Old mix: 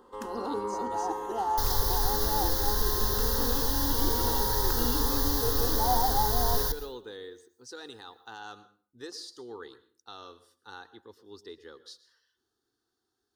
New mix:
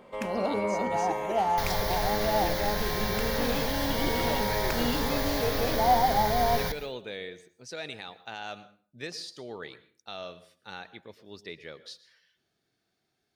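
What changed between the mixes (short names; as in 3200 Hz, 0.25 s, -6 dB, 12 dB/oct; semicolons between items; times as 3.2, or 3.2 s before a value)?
second sound: add tone controls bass -6 dB, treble -8 dB; master: remove fixed phaser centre 620 Hz, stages 6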